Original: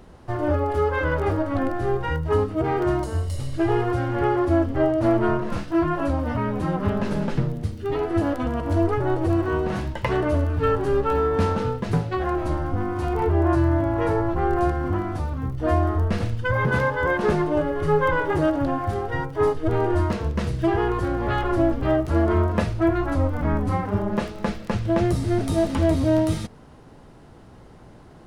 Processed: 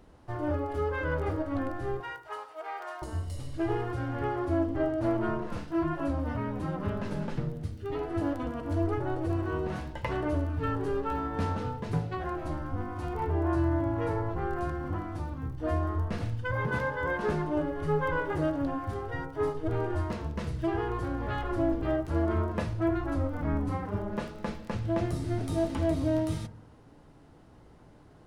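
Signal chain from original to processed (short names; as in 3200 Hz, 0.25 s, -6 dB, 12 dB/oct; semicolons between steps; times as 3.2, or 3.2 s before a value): 2–3.02 HPF 670 Hz 24 dB/oct; FDN reverb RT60 0.76 s, low-frequency decay 1.25×, high-frequency decay 0.25×, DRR 10.5 dB; gain -9 dB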